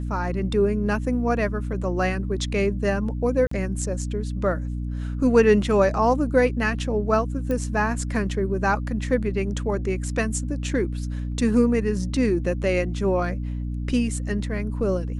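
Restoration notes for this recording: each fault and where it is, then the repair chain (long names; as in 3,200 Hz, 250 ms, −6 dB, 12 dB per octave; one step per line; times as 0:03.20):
mains hum 60 Hz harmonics 5 −28 dBFS
0:03.47–0:03.51: drop-out 44 ms
0:07.51: click −16 dBFS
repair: click removal
hum removal 60 Hz, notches 5
repair the gap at 0:03.47, 44 ms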